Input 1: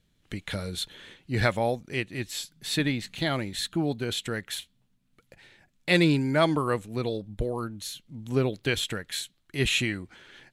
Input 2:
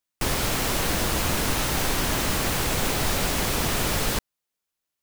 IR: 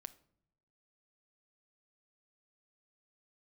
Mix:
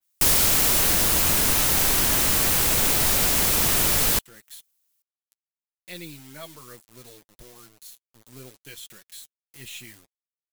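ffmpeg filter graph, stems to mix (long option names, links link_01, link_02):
-filter_complex "[0:a]aeval=exprs='if(lt(val(0),0),0.708*val(0),val(0))':channel_layout=same,acrusher=bits=5:mix=0:aa=0.000001,flanger=delay=5.4:depth=3.4:regen=-24:speed=0.67:shape=sinusoidal,volume=-16dB[link_01];[1:a]volume=-2dB[link_02];[link_01][link_02]amix=inputs=2:normalize=0,crystalizer=i=3.5:c=0,adynamicequalizer=threshold=0.0126:dfrequency=3200:dqfactor=0.7:tfrequency=3200:tqfactor=0.7:attack=5:release=100:ratio=0.375:range=2:mode=cutabove:tftype=highshelf"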